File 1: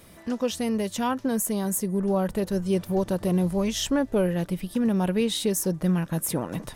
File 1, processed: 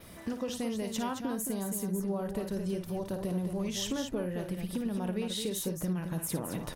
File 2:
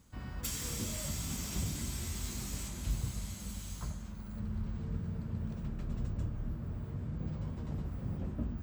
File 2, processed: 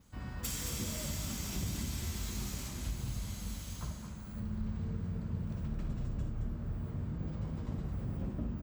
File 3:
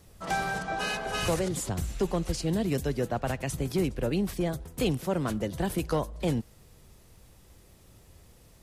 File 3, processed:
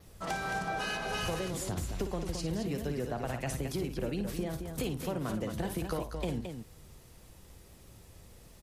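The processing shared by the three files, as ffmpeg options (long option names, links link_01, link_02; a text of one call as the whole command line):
ffmpeg -i in.wav -filter_complex "[0:a]acompressor=threshold=-32dB:ratio=6,asplit=2[link_01][link_02];[link_02]aecho=0:1:55.39|218.7:0.355|0.447[link_03];[link_01][link_03]amix=inputs=2:normalize=0,adynamicequalizer=threshold=0.00112:dfrequency=8200:dqfactor=2.9:tfrequency=8200:tqfactor=2.9:attack=5:release=100:ratio=0.375:range=2.5:mode=cutabove:tftype=bell" out.wav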